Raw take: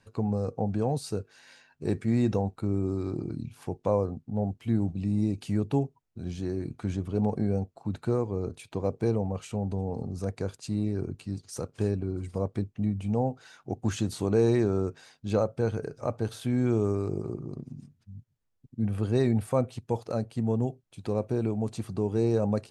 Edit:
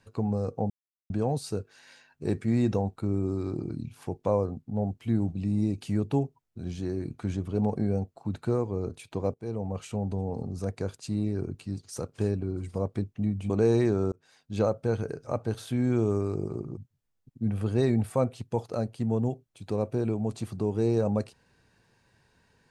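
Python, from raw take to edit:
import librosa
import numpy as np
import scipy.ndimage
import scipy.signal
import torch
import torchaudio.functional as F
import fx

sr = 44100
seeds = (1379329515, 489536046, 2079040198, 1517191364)

y = fx.edit(x, sr, fx.insert_silence(at_s=0.7, length_s=0.4),
    fx.fade_in_from(start_s=8.94, length_s=0.44, floor_db=-22.0),
    fx.cut(start_s=13.1, length_s=1.14),
    fx.fade_in_span(start_s=14.86, length_s=0.48),
    fx.cut(start_s=17.51, length_s=0.63), tone=tone)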